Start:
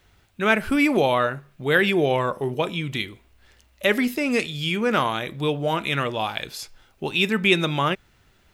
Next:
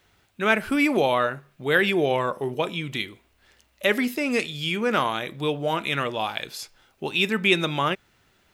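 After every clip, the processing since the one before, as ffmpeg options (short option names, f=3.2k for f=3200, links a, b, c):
-af "lowshelf=f=89:g=-12,volume=-1dB"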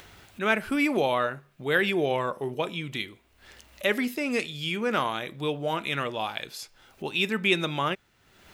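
-af "acompressor=mode=upward:threshold=-34dB:ratio=2.5,volume=-3.5dB"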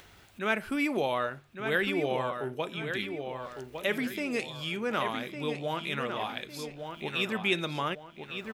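-filter_complex "[0:a]asplit=2[a][b];[b]adelay=1156,lowpass=f=4.5k:p=1,volume=-7dB,asplit=2[c][d];[d]adelay=1156,lowpass=f=4.5k:p=1,volume=0.39,asplit=2[e][f];[f]adelay=1156,lowpass=f=4.5k:p=1,volume=0.39,asplit=2[g][h];[h]adelay=1156,lowpass=f=4.5k:p=1,volume=0.39,asplit=2[i][j];[j]adelay=1156,lowpass=f=4.5k:p=1,volume=0.39[k];[a][c][e][g][i][k]amix=inputs=6:normalize=0,volume=-4.5dB"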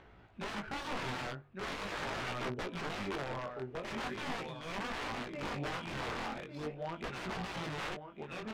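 -af "aeval=exprs='(mod(33.5*val(0)+1,2)-1)/33.5':c=same,flanger=delay=16:depth=7.4:speed=0.41,adynamicsmooth=sensitivity=5.5:basefreq=1.7k,volume=3dB"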